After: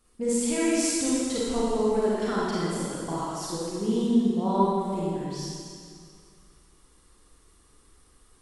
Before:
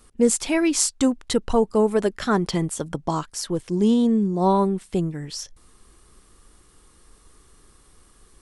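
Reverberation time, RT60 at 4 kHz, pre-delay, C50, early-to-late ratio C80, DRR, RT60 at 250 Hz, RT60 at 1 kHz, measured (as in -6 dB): 2.2 s, 2.1 s, 30 ms, -5.0 dB, -2.0 dB, -8.0 dB, 2.1 s, 2.2 s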